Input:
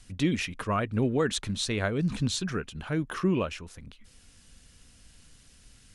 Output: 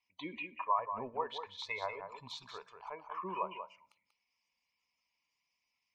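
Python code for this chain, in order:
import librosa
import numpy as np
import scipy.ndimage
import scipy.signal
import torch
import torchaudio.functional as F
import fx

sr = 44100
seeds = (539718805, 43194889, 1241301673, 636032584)

p1 = fx.double_bandpass(x, sr, hz=1500.0, octaves=1.2)
p2 = fx.air_absorb(p1, sr, metres=51.0)
p3 = fx.quant_dither(p2, sr, seeds[0], bits=8, dither='none')
p4 = p2 + (p3 * 10.0 ** (-7.0 / 20.0))
p5 = fx.spec_gate(p4, sr, threshold_db=-25, keep='strong')
p6 = fx.env_lowpass_down(p5, sr, base_hz=1700.0, full_db=-35.0)
p7 = fx.noise_reduce_blind(p6, sr, reduce_db=16)
p8 = p7 + 10.0 ** (-8.5 / 20.0) * np.pad(p7, (int(188 * sr / 1000.0), 0))[:len(p7)]
p9 = fx.rev_fdn(p8, sr, rt60_s=0.62, lf_ratio=1.4, hf_ratio=0.75, size_ms=10.0, drr_db=18.0)
y = p9 * 10.0 ** (4.0 / 20.0)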